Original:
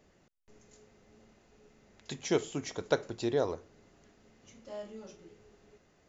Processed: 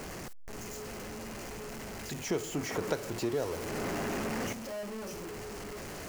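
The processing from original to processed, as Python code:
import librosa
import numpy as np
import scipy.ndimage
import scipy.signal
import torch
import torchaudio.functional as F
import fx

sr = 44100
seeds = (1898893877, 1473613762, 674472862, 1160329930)

y = x + 0.5 * 10.0 ** (-32.0 / 20.0) * np.sign(x)
y = fx.peak_eq(y, sr, hz=3600.0, db=-7.0, octaves=0.35)
y = fx.band_squash(y, sr, depth_pct=100, at=(2.26, 4.53))
y = F.gain(torch.from_numpy(y), -4.0).numpy()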